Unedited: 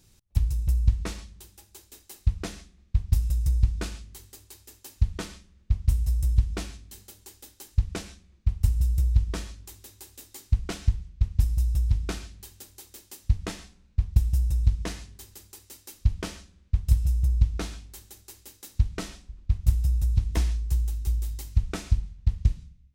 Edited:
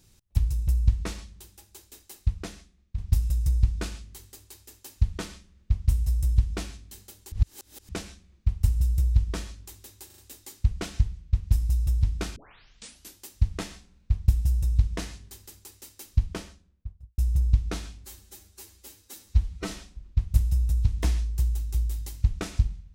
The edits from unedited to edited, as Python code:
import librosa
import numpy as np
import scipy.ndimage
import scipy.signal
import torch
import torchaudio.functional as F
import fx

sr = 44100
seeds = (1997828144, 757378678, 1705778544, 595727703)

y = fx.studio_fade_out(x, sr, start_s=16.0, length_s=1.06)
y = fx.edit(y, sr, fx.fade_out_to(start_s=2.01, length_s=0.97, floor_db=-9.0),
    fx.reverse_span(start_s=7.32, length_s=0.57),
    fx.stutter(start_s=10.06, slice_s=0.04, count=4),
    fx.tape_start(start_s=12.24, length_s=0.83),
    fx.stretch_span(start_s=17.92, length_s=1.11, factor=1.5), tone=tone)